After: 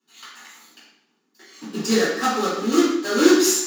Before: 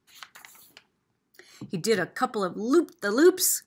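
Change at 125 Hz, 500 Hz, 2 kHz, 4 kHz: +1.0, +4.0, +5.5, +9.0 dB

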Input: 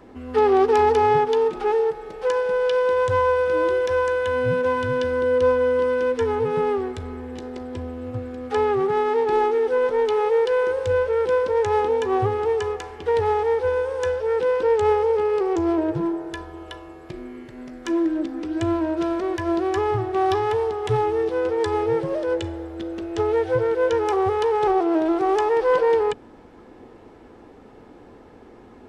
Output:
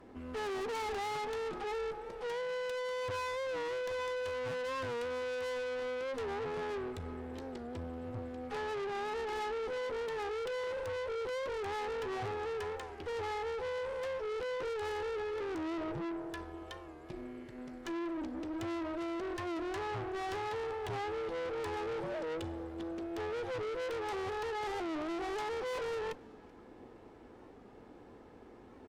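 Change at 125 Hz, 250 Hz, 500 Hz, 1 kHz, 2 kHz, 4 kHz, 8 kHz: -16.0 dB, -15.0 dB, -17.0 dB, -16.0 dB, -11.5 dB, -8.0 dB, n/a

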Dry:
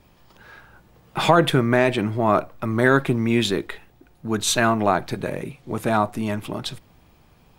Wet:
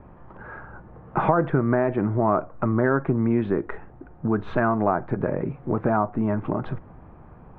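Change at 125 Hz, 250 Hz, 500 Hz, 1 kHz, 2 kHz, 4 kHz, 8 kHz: -0.5 dB, -1.0 dB, -2.0 dB, -2.5 dB, -7.5 dB, under -25 dB, under -40 dB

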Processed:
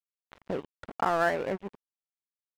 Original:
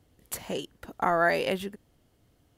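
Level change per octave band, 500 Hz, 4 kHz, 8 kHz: -2.0, -9.0, -12.5 dB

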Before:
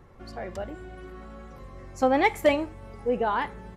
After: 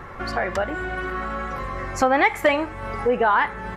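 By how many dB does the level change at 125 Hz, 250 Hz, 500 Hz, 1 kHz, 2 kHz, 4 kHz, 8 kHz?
+7.0, +2.0, +3.5, +6.5, +9.5, +5.0, +8.0 dB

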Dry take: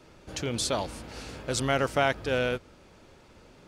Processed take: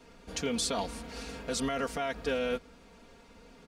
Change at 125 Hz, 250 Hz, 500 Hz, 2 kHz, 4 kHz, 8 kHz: -10.5, -1.5, -4.5, -7.0, -3.0, -2.0 dB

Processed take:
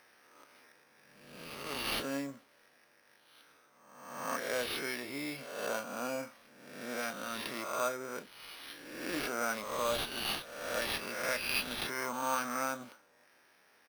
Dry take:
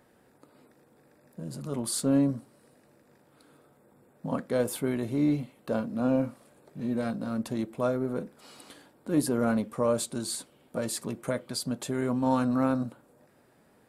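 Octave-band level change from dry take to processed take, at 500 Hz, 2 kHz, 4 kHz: -7.5, +6.5, +3.5 dB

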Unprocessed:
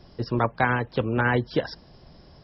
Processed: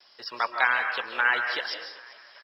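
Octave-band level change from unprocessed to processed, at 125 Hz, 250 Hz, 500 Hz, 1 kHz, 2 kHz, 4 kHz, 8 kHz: under -35 dB, -22.5 dB, -11.5 dB, -1.0 dB, +4.5 dB, +6.5 dB, n/a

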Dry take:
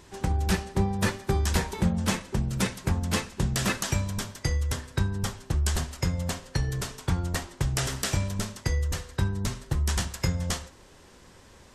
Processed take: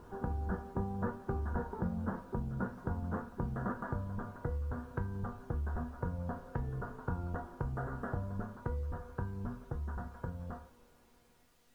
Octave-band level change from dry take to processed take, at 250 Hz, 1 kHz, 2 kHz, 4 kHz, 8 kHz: -9.0 dB, -7.0 dB, -14.0 dB, under -35 dB, under -35 dB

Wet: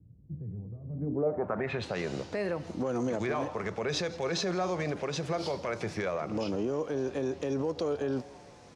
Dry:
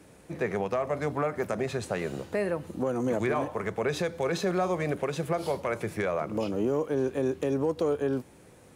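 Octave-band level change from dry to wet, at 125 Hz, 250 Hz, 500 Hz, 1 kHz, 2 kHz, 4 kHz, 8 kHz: -2.0, -2.5, -3.5, -4.0, -3.0, +4.0, +0.5 dB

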